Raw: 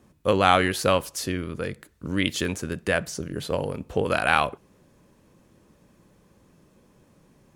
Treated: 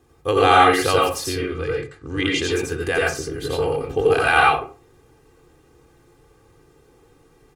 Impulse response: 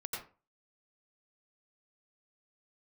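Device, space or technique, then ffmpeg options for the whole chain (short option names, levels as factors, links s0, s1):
microphone above a desk: -filter_complex "[0:a]asettb=1/sr,asplit=3[s0][s1][s2];[s0]atrim=end=1.344[s3];[s1]atrim=start=1.34:end=2.43,asetpts=PTS-STARTPTS,afade=t=in:d=0.004:c=qsin,afade=t=out:st=1.086:d=0.004:c=qsin,lowpass=f=8100:w=0.5412,lowpass=f=8100:w=1.3066[s4];[s2]atrim=start=2.426[s5];[s3][s4]acrossfade=d=0.004:c1=hsin:c2=qsin[s6];[s6][s5]acrossfade=d=0.004:c1=qsin:c2=hsin,aecho=1:1:2.5:0.88[s7];[1:a]atrim=start_sample=2205[s8];[s7][s8]afir=irnorm=-1:irlink=0,volume=1.33"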